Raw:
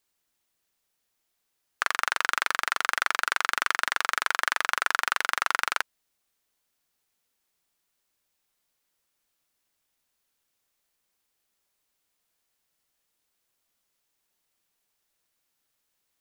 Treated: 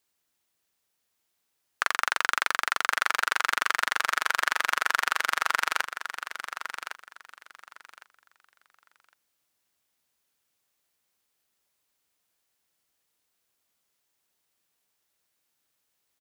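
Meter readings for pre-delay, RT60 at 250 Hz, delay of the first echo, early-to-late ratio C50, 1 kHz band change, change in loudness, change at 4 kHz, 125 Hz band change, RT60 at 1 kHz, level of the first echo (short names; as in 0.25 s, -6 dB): none, none, 1.108 s, none, +0.5 dB, -0.5 dB, +0.5 dB, n/a, none, -10.0 dB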